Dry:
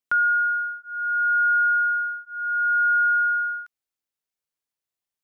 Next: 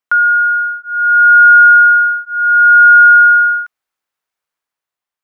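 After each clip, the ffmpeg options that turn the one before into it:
-af "dynaudnorm=f=240:g=7:m=5.5dB,equalizer=f=1.2k:w=0.53:g=11.5,volume=-1.5dB"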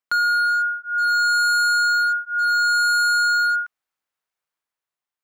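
-af "asoftclip=type=hard:threshold=-12.5dB,volume=-5dB"

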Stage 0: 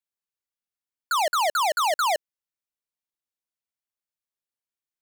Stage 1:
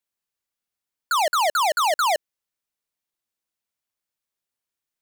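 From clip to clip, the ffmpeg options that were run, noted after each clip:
-af "alimiter=level_in=1dB:limit=-24dB:level=0:latency=1,volume=-1dB,volume=5.5dB"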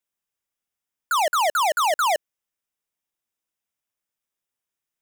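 -af "bandreject=f=4.3k:w=5.1"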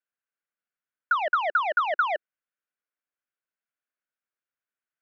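-af "highpass=240,equalizer=f=360:t=q:w=4:g=-4,equalizer=f=890:t=q:w=4:g=-6,equalizer=f=1.5k:t=q:w=4:g=9,lowpass=f=2.7k:w=0.5412,lowpass=f=2.7k:w=1.3066,volume=-4.5dB"

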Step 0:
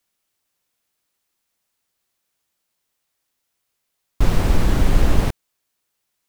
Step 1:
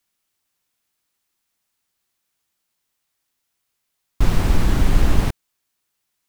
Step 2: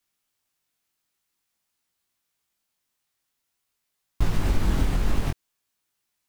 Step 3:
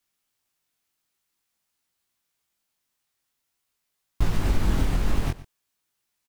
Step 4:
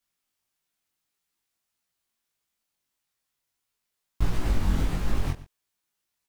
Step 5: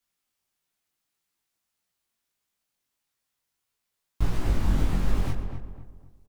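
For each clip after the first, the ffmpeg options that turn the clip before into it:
-af "equalizer=f=530:t=o:w=0.78:g=-4"
-af "acompressor=threshold=-13dB:ratio=6,flanger=delay=17.5:depth=5.1:speed=0.5"
-af "aecho=1:1:119:0.133"
-af "flanger=delay=16:depth=6.5:speed=1.6"
-filter_complex "[0:a]acrossover=split=1100[a][b];[b]asoftclip=type=tanh:threshold=-38dB[c];[a][c]amix=inputs=2:normalize=0,asplit=2[d][e];[e]adelay=254,lowpass=f=1.5k:p=1,volume=-7dB,asplit=2[f][g];[g]adelay=254,lowpass=f=1.5k:p=1,volume=0.38,asplit=2[h][i];[i]adelay=254,lowpass=f=1.5k:p=1,volume=0.38,asplit=2[j][k];[k]adelay=254,lowpass=f=1.5k:p=1,volume=0.38[l];[d][f][h][j][l]amix=inputs=5:normalize=0"

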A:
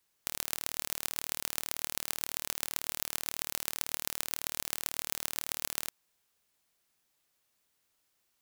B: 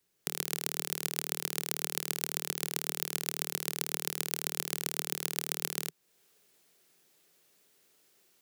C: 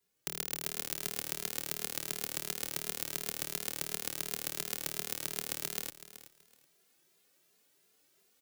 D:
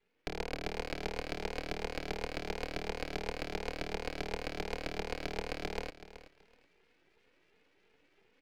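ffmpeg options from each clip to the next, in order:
-filter_complex "[0:a]equalizer=f=160:t=o:w=0.67:g=11,equalizer=f=400:t=o:w=0.67:g=9,equalizer=f=1k:t=o:w=0.67:g=-4,acrossover=split=220[a][b];[b]dynaudnorm=f=120:g=3:m=10dB[c];[a][c]amix=inputs=2:normalize=0,volume=-1dB"
-filter_complex "[0:a]aecho=1:1:377|754:0.2|0.0399,asplit=2[a][b];[b]adelay=2.5,afreqshift=2.8[c];[a][c]amix=inputs=2:normalize=1"
-af "highpass=f=160:w=0.5412,highpass=f=160:w=1.3066,equalizer=f=280:t=q:w=4:g=5,equalizer=f=480:t=q:w=4:g=7,equalizer=f=710:t=q:w=4:g=-9,equalizer=f=1.1k:t=q:w=4:g=-8,equalizer=f=2.3k:t=q:w=4:g=5,lowpass=f=2.7k:w=0.5412,lowpass=f=2.7k:w=1.3066,aeval=exprs='max(val(0),0)':c=same,volume=10.5dB"

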